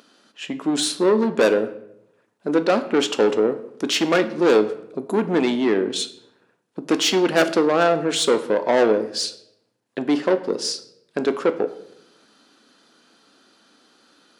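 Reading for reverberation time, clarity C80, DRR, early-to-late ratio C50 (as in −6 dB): 0.80 s, 16.5 dB, 9.5 dB, 14.0 dB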